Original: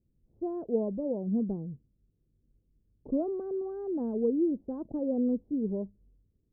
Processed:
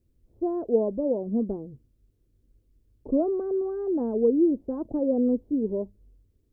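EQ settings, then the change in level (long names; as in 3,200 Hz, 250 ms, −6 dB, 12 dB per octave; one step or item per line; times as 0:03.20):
parametric band 170 Hz −13.5 dB 0.57 octaves
notch filter 790 Hz, Q 20
+7.5 dB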